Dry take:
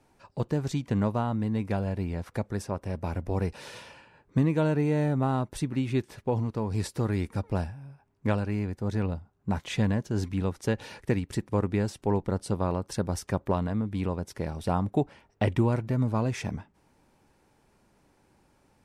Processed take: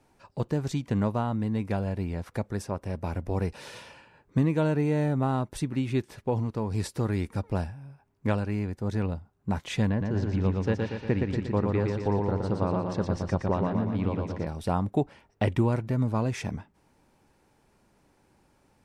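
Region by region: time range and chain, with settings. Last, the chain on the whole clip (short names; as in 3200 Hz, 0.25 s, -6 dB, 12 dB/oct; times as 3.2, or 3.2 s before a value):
9.89–14.47 air absorption 160 m + feedback echo 0.118 s, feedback 55%, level -3.5 dB
whole clip: dry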